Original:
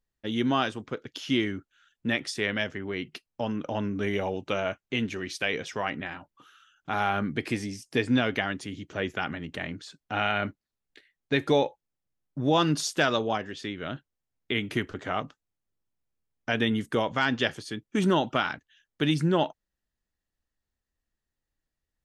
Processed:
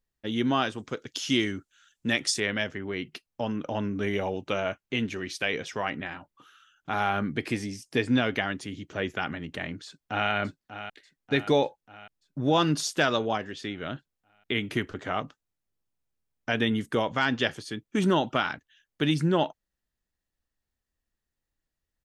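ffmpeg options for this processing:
-filter_complex "[0:a]asettb=1/sr,asplit=3[a][b][c];[a]atrim=end=0.784[d];[b]atrim=start=0.78:end=2.4,asetpts=PTS-STARTPTS,afade=t=in:d=0.004:c=qsin,afade=t=out:st=1.616:d=0.004:c=qsin,equalizer=f=7.4k:t=o:w=1.5:g=11.5[e];[c]atrim=start=2.396[f];[d][e]acrossfade=d=0.004:c1=hsin:c2=qsin[g];[g][f]acrossfade=d=0.004:c1=qsin:c2=hsin,asplit=2[h][i];[i]afade=t=in:st=9.85:d=0.01,afade=t=out:st=10.3:d=0.01,aecho=0:1:590|1180|1770|2360|2950|3540|4130:0.266073|0.159644|0.0957861|0.0574717|0.034483|0.0206898|0.0124139[j];[h][j]amix=inputs=2:normalize=0"

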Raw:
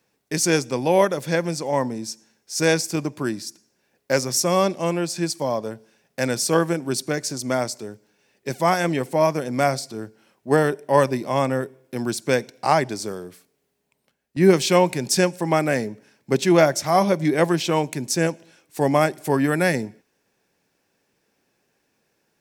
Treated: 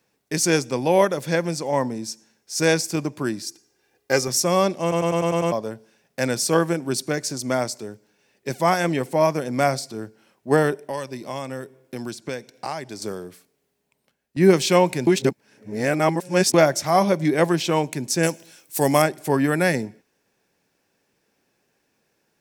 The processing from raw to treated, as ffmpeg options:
-filter_complex "[0:a]asettb=1/sr,asplit=3[a][b][c];[a]atrim=end=3.434[d];[b]atrim=start=3.43:end=4.28,asetpts=PTS-STARTPTS,afade=t=in:d=0.004:c=qsin,afade=t=out:st=0.846:d=0.004:c=qsin,aecho=1:1:2.5:0.65,atrim=end_sample=37485[e];[c]atrim=start=4.276[f];[d][e]acrossfade=d=0.004:c1=hsin:c2=qsin[g];[g][f]acrossfade=d=0.004:c1=qsin:c2=hsin,asettb=1/sr,asplit=3[h][i][j];[h]atrim=end=10.764[k];[i]atrim=start=10.76:end=13.02,asetpts=PTS-STARTPTS,afade=t=in:d=0.004:c=qsin,afade=t=out:st=2.256:d=0.004:c=qsin,acrossover=split=2900|7000[l][m][n];[l]acompressor=threshold=-29dB:ratio=4[o];[m]acompressor=threshold=-42dB:ratio=4[p];[n]acompressor=threshold=-51dB:ratio=4[q];[o][p][q]amix=inputs=3:normalize=0[r];[j]atrim=start=13.016[s];[k][r]acrossfade=d=0.004:c1=hsin:c2=qsin[t];[t][s]acrossfade=d=0.004:c1=qsin:c2=hsin,asettb=1/sr,asplit=3[u][v][w];[u]atrim=end=18.234[x];[v]atrim=start=18.23:end=19.02,asetpts=PTS-STARTPTS,afade=t=in:d=0.004:c=qsin,afade=t=out:st=0.786:d=0.004:c=qsin,aemphasis=mode=production:type=75kf[y];[w]atrim=start=19.016[z];[x][y]acrossfade=d=0.004:c1=hsin:c2=qsin[aa];[aa][z]acrossfade=d=0.004:c1=qsin:c2=hsin,asplit=10[ab][ac][ad][ae][af][ag][ah][ai][aj][ak];[ab]atrim=end=4.922[al];[ac]atrim=start=4.818:end=4.922[am];[ad]atrim=start=4.818:end=4.922[an];[ae]atrim=start=4.818:end=4.922[ao];[af]atrim=start=4.818:end=4.922[ap];[ag]atrim=start=4.818:end=4.922[aq];[ah]atrim=start=4.818:end=4.922[ar];[ai]atrim=start=5.518:end=15.072[as];[aj]atrim=start=15.068:end=16.542,asetpts=PTS-STARTPTS,areverse[at];[ak]atrim=start=16.538[au];[al][am]acrossfade=d=0.004:c1=hsin:c2=hsin[av];[av][an]acrossfade=d=0.004:c1=hsin:c2=hsin[aw];[aw][ao]acrossfade=d=0.004:c1=hsin:c2=hsin[ax];[ax][ap]acrossfade=d=0.004:c1=hsin:c2=hsin[ay];[ay][aq]acrossfade=d=0.004:c1=hsin:c2=hsin[az];[az][ar]acrossfade=d=0.004:c1=hsin:c2=hsin[ba];[ba][as]acrossfade=d=0.004:c1=hsin:c2=hsin[bb];[bb][at]acrossfade=d=0.004:c1=hsin:c2=hsin[bc];[bc][au]acrossfade=d=0.004:c1=hsin:c2=hsin"

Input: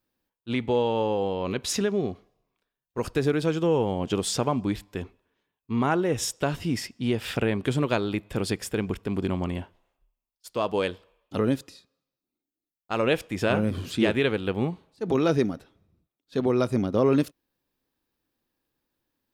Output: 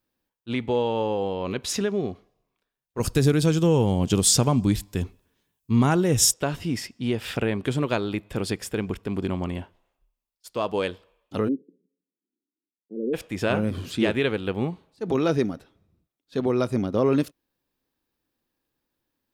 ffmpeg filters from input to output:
-filter_complex "[0:a]asettb=1/sr,asplit=3[a][b][c];[a]atrim=end=3.004[d];[b]atrim=start=3:end=6.34,asetpts=PTS-STARTPTS,afade=t=in:d=0.004:c=qsin,afade=t=out:st=3.336:d=0.004:c=qsin,bass=f=250:g=10,treble=f=4k:g=13[e];[c]atrim=start=6.336[f];[d][e]acrossfade=d=0.004:c1=hsin:c2=qsin[g];[g][f]acrossfade=d=0.004:c1=qsin:c2=hsin,asplit=3[h][i][j];[h]afade=t=out:st=11.47:d=0.02[k];[i]asuperpass=centerf=280:order=12:qfactor=0.95,afade=t=in:st=11.47:d=0.02,afade=t=out:st=13.13:d=0.02[l];[j]afade=t=in:st=13.13:d=0.02[m];[k][l][m]amix=inputs=3:normalize=0"

